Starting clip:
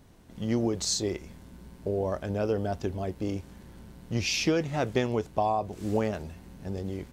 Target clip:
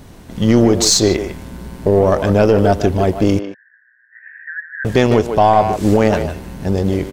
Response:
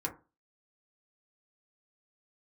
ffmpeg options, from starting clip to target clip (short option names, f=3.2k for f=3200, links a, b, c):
-filter_complex "[0:a]aeval=exprs='0.211*(cos(1*acos(clip(val(0)/0.211,-1,1)))-cos(1*PI/2))+0.00422*(cos(7*acos(clip(val(0)/0.211,-1,1)))-cos(7*PI/2))+0.00531*(cos(8*acos(clip(val(0)/0.211,-1,1)))-cos(8*PI/2))':c=same,asettb=1/sr,asplit=3[a][b][c];[a]atrim=end=3.394[d];[b]atrim=start=3.39:end=4.85,asetpts=PTS-STARTPTS,afade=t=in:d=0.004:c=qsin,afade=t=out:st=1.456:d=0.004:c=qsin,asuperpass=centerf=1700:order=8:qfactor=5.2[e];[c]atrim=start=4.846[f];[d][e]acrossfade=d=0.004:c1=hsin:c2=qsin[g];[g][f]acrossfade=d=0.004:c1=qsin:c2=hsin,asplit=2[h][i];[i]adelay=150,highpass=300,lowpass=3.4k,asoftclip=type=hard:threshold=-22dB,volume=-9dB[j];[h][j]amix=inputs=2:normalize=0,alimiter=level_in=19dB:limit=-1dB:release=50:level=0:latency=1,volume=-1dB"